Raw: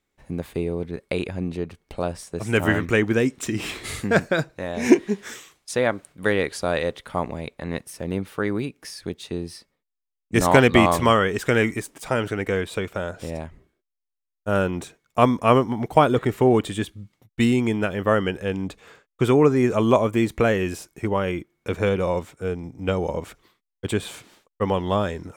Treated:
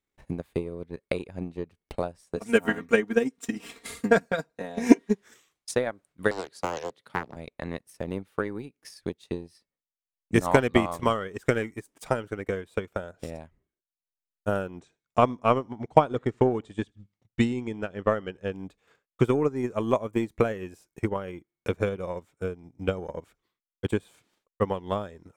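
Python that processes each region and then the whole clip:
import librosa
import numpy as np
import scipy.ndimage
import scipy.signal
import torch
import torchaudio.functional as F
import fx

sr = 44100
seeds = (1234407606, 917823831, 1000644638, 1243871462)

y = fx.chain(x, sr, fx.highpass(hz=160.0, slope=6),
    fx.comb(ms=4.3, depth=0.91), at=(2.36, 5.15))
y = fx.chain(y, sr, fx.highpass(hz=120.0, slope=24),
    fx.peak_eq(hz=4200.0, db=6.5, octaves=0.39),
    fx.doppler_dist(depth_ms=0.76), at=(6.31, 7.36))
y = fx.chain(y, sr, fx.lowpass(hz=7600.0, slope=24),
    fx.echo_feedback(ms=80, feedback_pct=21, wet_db=-24), at=(14.81, 18.53))
y = fx.dynamic_eq(y, sr, hz=2900.0, q=0.74, threshold_db=-39.0, ratio=4.0, max_db=-4)
y = fx.transient(y, sr, attack_db=11, sustain_db=-9)
y = y * 10.0 ** (-10.5 / 20.0)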